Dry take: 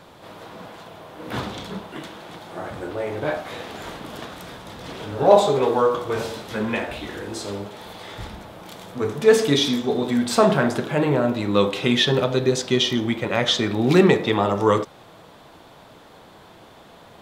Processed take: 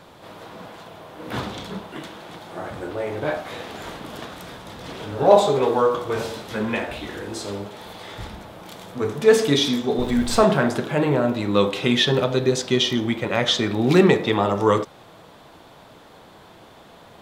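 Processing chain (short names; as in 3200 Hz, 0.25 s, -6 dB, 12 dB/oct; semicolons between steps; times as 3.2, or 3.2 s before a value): 9.98–10.43 added noise brown -29 dBFS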